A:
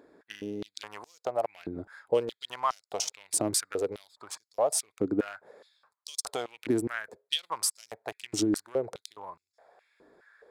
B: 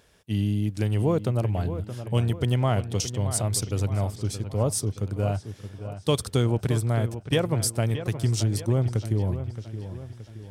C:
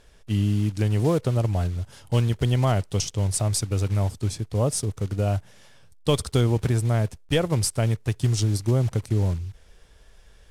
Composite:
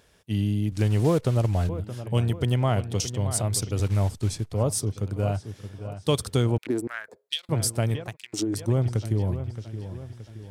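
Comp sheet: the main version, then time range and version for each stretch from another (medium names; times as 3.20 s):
B
0.72–1.69 s: from C
3.80–4.53 s: from C
6.58–7.49 s: from A
8.05–8.56 s: from A, crossfade 0.24 s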